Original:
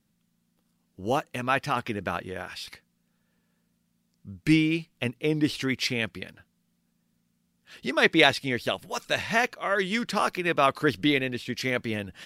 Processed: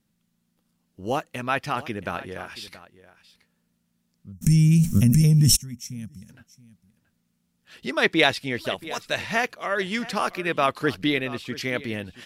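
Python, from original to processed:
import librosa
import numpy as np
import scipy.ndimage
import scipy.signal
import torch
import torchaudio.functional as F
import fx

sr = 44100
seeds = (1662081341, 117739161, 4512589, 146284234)

y = fx.spec_box(x, sr, start_s=4.32, length_s=1.98, low_hz=240.0, high_hz=5300.0, gain_db=-25)
y = y + 10.0 ** (-17.5 / 20.0) * np.pad(y, (int(677 * sr / 1000.0), 0))[:len(y)]
y = fx.env_flatten(y, sr, amount_pct=100, at=(4.41, 5.55), fade=0.02)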